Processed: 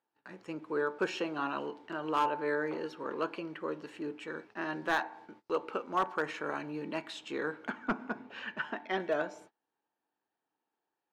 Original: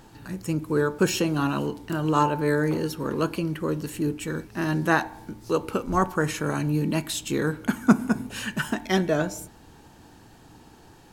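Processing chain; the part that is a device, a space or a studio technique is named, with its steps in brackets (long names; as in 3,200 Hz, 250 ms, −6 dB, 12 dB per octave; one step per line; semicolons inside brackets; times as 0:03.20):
walkie-talkie (band-pass filter 450–2,800 Hz; hard clipping −16.5 dBFS, distortion −16 dB; noise gate −49 dBFS, range −27 dB)
0:07.70–0:09.00: high-frequency loss of the air 130 metres
level −5 dB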